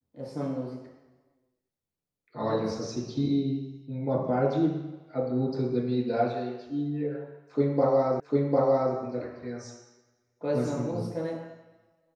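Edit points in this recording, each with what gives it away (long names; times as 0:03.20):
0:08.20: the same again, the last 0.75 s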